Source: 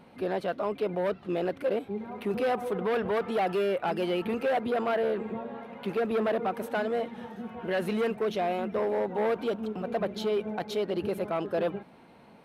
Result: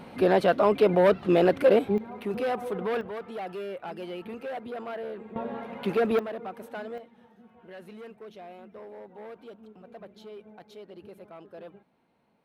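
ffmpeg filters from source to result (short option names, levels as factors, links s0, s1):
-af "asetnsamples=n=441:p=0,asendcmd='1.98 volume volume -1dB;3.01 volume volume -8.5dB;5.36 volume volume 4dB;6.19 volume volume -8dB;6.98 volume volume -16dB',volume=2.82"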